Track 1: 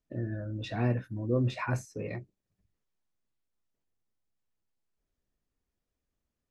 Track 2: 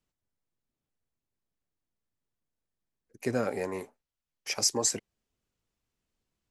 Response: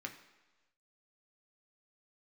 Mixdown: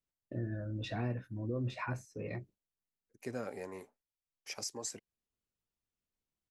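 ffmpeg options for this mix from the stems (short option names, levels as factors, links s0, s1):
-filter_complex "[0:a]agate=range=0.0224:threshold=0.00251:ratio=3:detection=peak,adelay=200,volume=0.794[s0];[1:a]volume=0.299[s1];[s0][s1]amix=inputs=2:normalize=0,alimiter=level_in=1.41:limit=0.0631:level=0:latency=1:release=483,volume=0.708"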